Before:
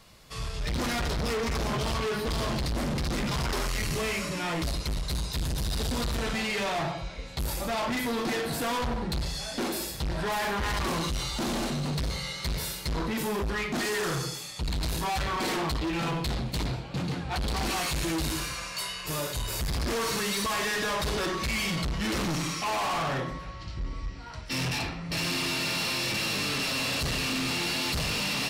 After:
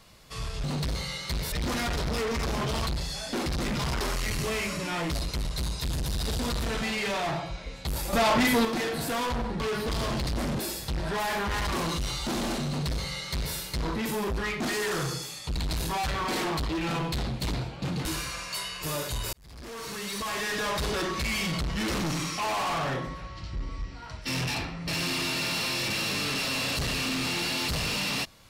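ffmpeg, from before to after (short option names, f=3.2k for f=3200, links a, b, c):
-filter_complex "[0:a]asplit=11[a][b][c][d][e][f][g][h][i][j][k];[a]atrim=end=0.642[l];[b]atrim=start=11.788:end=12.672[m];[c]atrim=start=0.638:end=1.992[n];[d]atrim=start=9.118:end=9.712[o];[e]atrim=start=2.978:end=7.652[p];[f]atrim=start=7.648:end=8.172,asetpts=PTS-STARTPTS,volume=7dB[q];[g]atrim=start=8.168:end=9.122[r];[h]atrim=start=1.988:end=2.982[s];[i]atrim=start=9.708:end=17.172[t];[j]atrim=start=18.288:end=19.57,asetpts=PTS-STARTPTS,afade=t=out:st=1.278:d=0.004:c=hsin[u];[k]atrim=start=19.57,asetpts=PTS-STARTPTS,afade=t=in:d=1.38[v];[l][m]acrossfade=d=0.004:c1=hsin:c2=hsin[w];[w][n]acrossfade=d=0.004:c1=hsin:c2=hsin[x];[x][o]acrossfade=d=0.004:c1=hsin:c2=hsin[y];[y][p]acrossfade=d=0.004:c1=hsin:c2=hsin[z];[z][q]acrossfade=d=0.004:c1=hsin:c2=hsin[aa];[aa][r]acrossfade=d=0.004:c1=hsin:c2=hsin[ab];[ab][s]acrossfade=d=0.004:c1=hsin:c2=hsin[ac];[ac][t]acrossfade=d=0.004:c1=hsin:c2=hsin[ad];[u][v]concat=n=2:v=0:a=1[ae];[ad][ae]acrossfade=d=0.004:c1=hsin:c2=hsin"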